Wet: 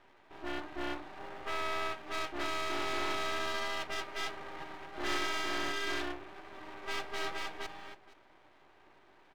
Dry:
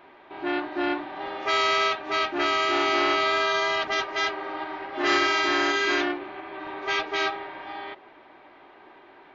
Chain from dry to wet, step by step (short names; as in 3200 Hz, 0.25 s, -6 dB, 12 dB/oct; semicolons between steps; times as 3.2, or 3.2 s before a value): 1.19–1.99 LPF 2400 Hz; half-wave rectifier; 6.43–7.19 echo throw 0.47 s, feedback 10%, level -2.5 dB; gain -7.5 dB